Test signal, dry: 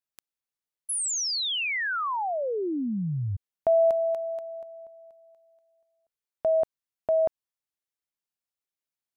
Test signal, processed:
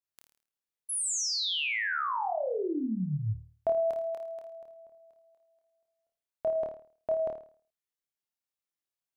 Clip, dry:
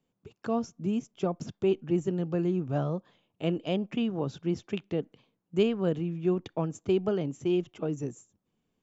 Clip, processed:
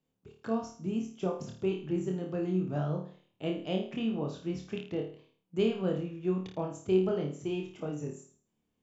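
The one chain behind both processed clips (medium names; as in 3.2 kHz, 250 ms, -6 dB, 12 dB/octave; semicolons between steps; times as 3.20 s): flutter echo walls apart 4.6 m, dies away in 0.45 s; trim -5 dB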